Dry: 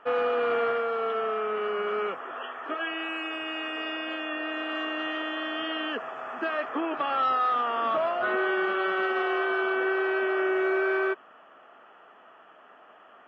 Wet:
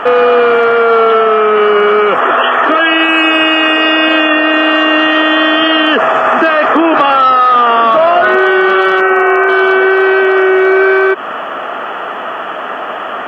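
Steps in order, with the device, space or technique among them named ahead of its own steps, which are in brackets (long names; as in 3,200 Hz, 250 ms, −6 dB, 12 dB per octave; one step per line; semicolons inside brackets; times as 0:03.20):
0:09.00–0:09.49: elliptic low-pass filter 2,600 Hz, stop band 40 dB
loud club master (downward compressor 2.5 to 1, threshold −31 dBFS, peak gain reduction 6 dB; hard clipping −24 dBFS, distortion −42 dB; boost into a limiter +34 dB)
level −1 dB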